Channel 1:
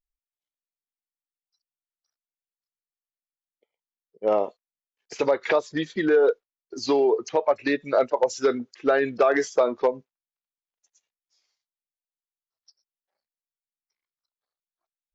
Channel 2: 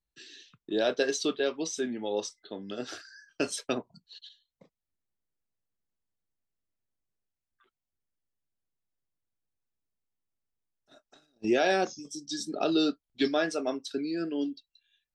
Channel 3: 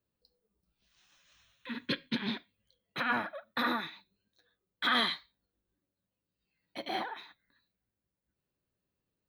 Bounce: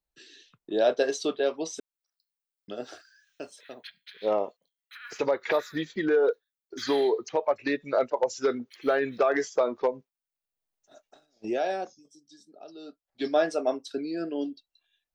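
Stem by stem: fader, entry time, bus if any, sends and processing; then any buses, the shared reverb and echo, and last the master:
−4.0 dB, 0.00 s, no send, no processing
−3.0 dB, 0.00 s, muted 0:01.80–0:02.68, no send, parametric band 660 Hz +9.5 dB 1.3 octaves; automatic ducking −23 dB, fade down 1.50 s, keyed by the first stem
−11.5 dB, 1.95 s, no send, Butterworth high-pass 1,400 Hz 36 dB per octave; high-shelf EQ 6,300 Hz +10.5 dB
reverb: not used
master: no processing

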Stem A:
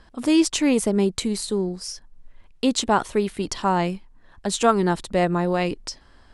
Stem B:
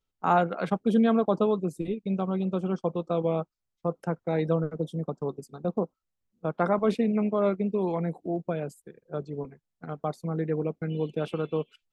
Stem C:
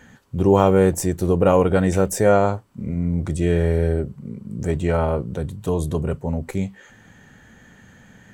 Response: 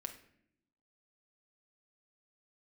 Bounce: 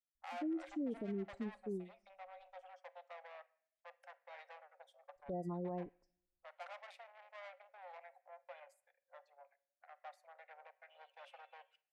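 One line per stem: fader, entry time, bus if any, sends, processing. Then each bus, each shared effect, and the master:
−4.5 dB, 0.15 s, muted 0:02.74–0:05.16, bus A, send −20.5 dB, gate on every frequency bin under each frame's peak −15 dB strong; expander for the loud parts 2.5 to 1, over −38 dBFS
−12.5 dB, 0.00 s, no bus, send −4 dB, tube saturation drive 29 dB, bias 0.65; Chebyshev high-pass with heavy ripple 530 Hz, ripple 9 dB
muted
bus A: 0.0 dB, Butterworth low-pass 1,100 Hz; downward compressor 4 to 1, threshold −30 dBFS, peak gain reduction 10 dB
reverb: on, RT60 0.70 s, pre-delay 6 ms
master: brickwall limiter −33.5 dBFS, peak gain reduction 10 dB

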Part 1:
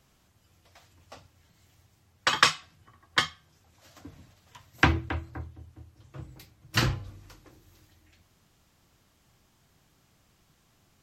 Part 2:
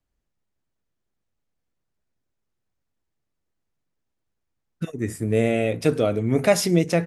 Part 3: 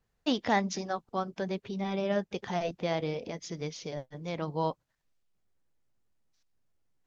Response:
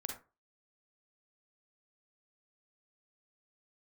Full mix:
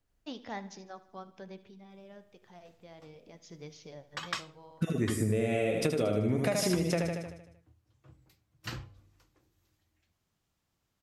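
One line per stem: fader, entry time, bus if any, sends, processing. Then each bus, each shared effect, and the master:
−15.0 dB, 1.90 s, no send, no echo send, no processing
+0.5 dB, 0.00 s, no send, echo send −4.5 dB, downward compressor, threshold −20 dBFS, peak gain reduction 8.5 dB
0:01.63 −13 dB → 0:01.85 −21.5 dB → 0:02.94 −21.5 dB → 0:03.56 −10 dB, 0.00 s, no send, echo send −17.5 dB, hum removal 122.2 Hz, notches 32; automatic ducking −21 dB, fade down 0.55 s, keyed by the second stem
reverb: not used
echo: repeating echo 77 ms, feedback 53%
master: downward compressor 6 to 1, threshold −25 dBFS, peak gain reduction 8.5 dB

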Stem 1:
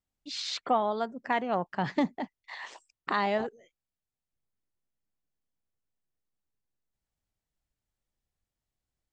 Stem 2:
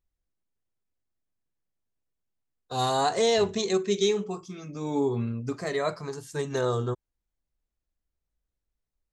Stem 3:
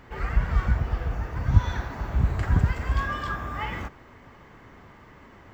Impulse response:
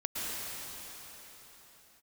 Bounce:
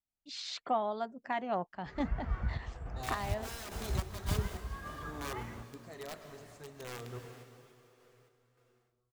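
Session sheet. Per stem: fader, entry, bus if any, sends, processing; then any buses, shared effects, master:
−5.0 dB, 0.00 s, no send, notch filter 470 Hz
−17.5 dB, 0.25 s, send −10.5 dB, wrap-around overflow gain 19.5 dB
−11.5 dB, 1.75 s, no send, high-shelf EQ 3,500 Hz −10 dB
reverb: on, pre-delay 103 ms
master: parametric band 680 Hz +3 dB 0.33 octaves; sample-and-hold tremolo

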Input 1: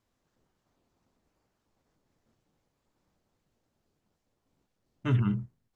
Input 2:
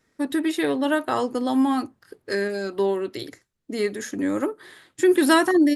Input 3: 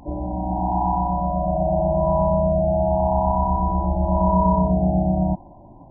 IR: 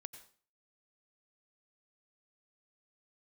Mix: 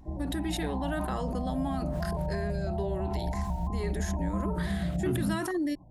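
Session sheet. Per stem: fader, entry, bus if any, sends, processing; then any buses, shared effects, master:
−4.0 dB, 0.00 s, no send, parametric band 240 Hz +11 dB 1.6 octaves
−9.5 dB, 0.00 s, send −20.5 dB, level that may fall only so fast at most 29 dB per second
−14.0 dB, 0.00 s, no send, bass and treble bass +9 dB, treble +4 dB; notch filter 880 Hz, Q 12; pitch modulation by a square or saw wave square 3 Hz, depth 100 cents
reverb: on, RT60 0.40 s, pre-delay 83 ms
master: downward compressor 3 to 1, threshold −28 dBFS, peak gain reduction 9 dB

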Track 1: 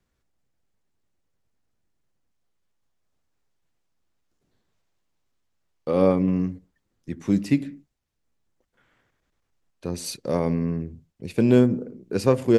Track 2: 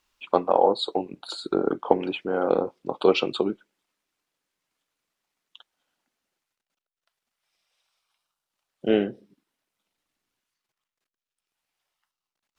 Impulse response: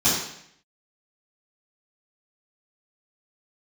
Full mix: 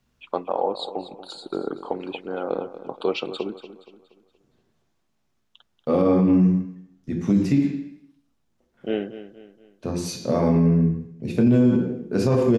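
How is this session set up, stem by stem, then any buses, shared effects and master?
+1.0 dB, 0.00 s, send −16 dB, no echo send, high-shelf EQ 4,400 Hz −8 dB
−4.5 dB, 0.00 s, no send, echo send −13.5 dB, no processing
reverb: on, RT60 0.70 s, pre-delay 3 ms
echo: repeating echo 236 ms, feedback 41%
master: brickwall limiter −10.5 dBFS, peak gain reduction 11 dB

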